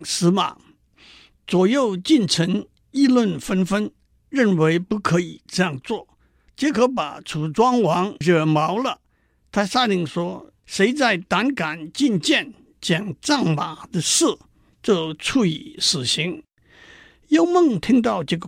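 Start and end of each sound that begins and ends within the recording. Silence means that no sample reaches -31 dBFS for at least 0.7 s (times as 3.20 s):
1.48–16.40 s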